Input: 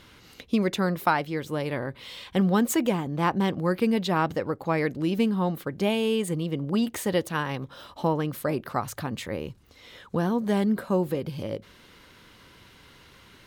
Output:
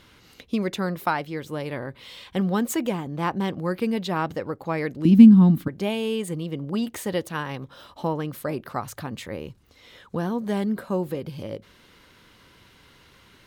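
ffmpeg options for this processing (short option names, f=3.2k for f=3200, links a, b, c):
-filter_complex "[0:a]asettb=1/sr,asplit=3[a][b][c];[a]atrim=end=5.054[d];[b]atrim=start=5.05:end=5.68,asetpts=PTS-STARTPTS,afade=t=in:d=0.004:c=qsin,afade=t=out:st=0.626:d=0.004:c=qsin,lowshelf=f=340:t=q:w=3:g=10.5[e];[c]atrim=start=5.676[f];[d][e]acrossfade=d=0.004:c1=hsin:c2=qsin[g];[g][f]acrossfade=d=0.004:c1=qsin:c2=hsin,volume=-1.5dB"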